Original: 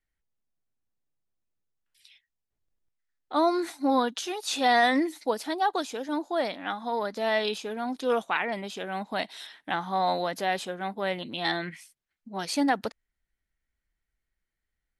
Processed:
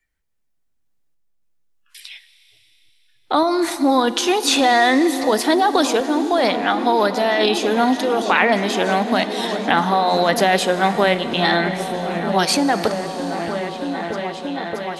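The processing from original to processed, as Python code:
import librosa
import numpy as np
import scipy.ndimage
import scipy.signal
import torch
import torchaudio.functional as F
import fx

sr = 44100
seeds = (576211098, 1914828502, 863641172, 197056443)

p1 = fx.noise_reduce_blind(x, sr, reduce_db=20)
p2 = fx.over_compress(p1, sr, threshold_db=-29.0, ratio=-0.5)
p3 = p1 + (p2 * 10.0 ** (2.5 / 20.0))
p4 = fx.tremolo_random(p3, sr, seeds[0], hz=3.5, depth_pct=55)
p5 = p4 + fx.echo_opening(p4, sr, ms=626, hz=200, octaves=1, feedback_pct=70, wet_db=-6, dry=0)
p6 = fx.rev_schroeder(p5, sr, rt60_s=3.3, comb_ms=27, drr_db=13.0)
p7 = fx.band_squash(p6, sr, depth_pct=40)
y = p7 * 10.0 ** (7.5 / 20.0)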